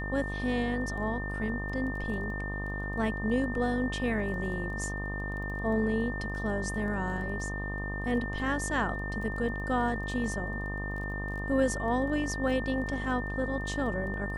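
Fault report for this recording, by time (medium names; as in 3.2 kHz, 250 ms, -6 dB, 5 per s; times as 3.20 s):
buzz 50 Hz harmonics 25 -36 dBFS
crackle 13 per s -40 dBFS
whine 1.8 kHz -37 dBFS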